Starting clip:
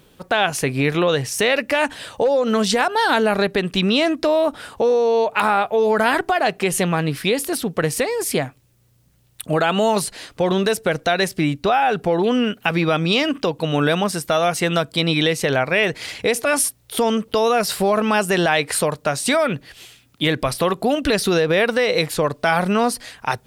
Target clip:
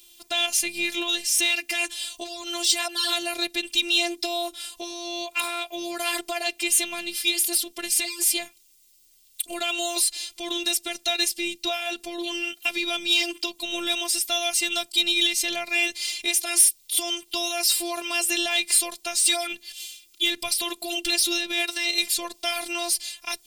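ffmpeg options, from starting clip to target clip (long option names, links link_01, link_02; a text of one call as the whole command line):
ffmpeg -i in.wav -af "afftfilt=real='hypot(re,im)*cos(PI*b)':imag='0':win_size=512:overlap=0.75,aexciter=amount=4.1:drive=9.7:freq=2300,volume=-10.5dB" out.wav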